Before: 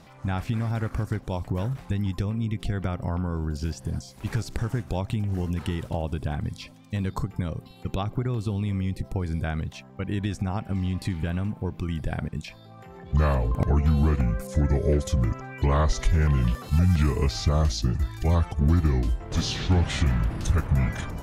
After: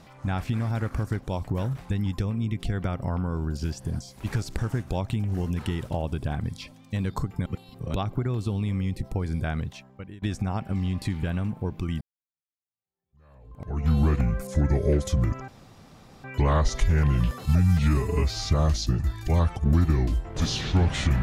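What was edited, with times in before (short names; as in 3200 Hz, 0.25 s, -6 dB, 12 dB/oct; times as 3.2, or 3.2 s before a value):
7.46–7.94 reverse
9.62–10.22 fade out linear, to -24 dB
12.01–13.91 fade in exponential
15.48 insert room tone 0.76 s
16.84–17.41 stretch 1.5×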